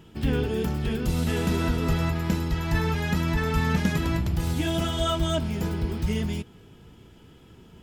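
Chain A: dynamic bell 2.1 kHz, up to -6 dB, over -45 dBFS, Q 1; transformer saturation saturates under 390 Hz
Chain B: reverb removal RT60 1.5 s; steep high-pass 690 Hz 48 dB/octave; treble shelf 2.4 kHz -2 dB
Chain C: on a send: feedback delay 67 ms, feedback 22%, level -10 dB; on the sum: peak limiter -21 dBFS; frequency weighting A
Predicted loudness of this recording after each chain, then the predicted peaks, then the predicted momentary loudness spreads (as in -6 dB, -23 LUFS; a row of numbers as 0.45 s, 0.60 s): -29.0 LUFS, -36.5 LUFS, -35.5 LUFS; -10.5 dBFS, -18.5 dBFS, -21.0 dBFS; 3 LU, 11 LU, 6 LU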